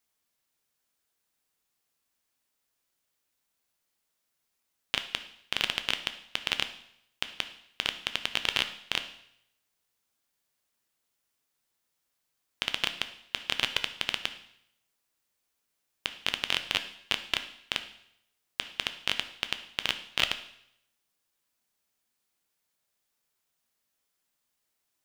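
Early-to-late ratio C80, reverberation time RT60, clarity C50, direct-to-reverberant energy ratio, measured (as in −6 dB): 15.0 dB, 0.75 s, 12.0 dB, 8.5 dB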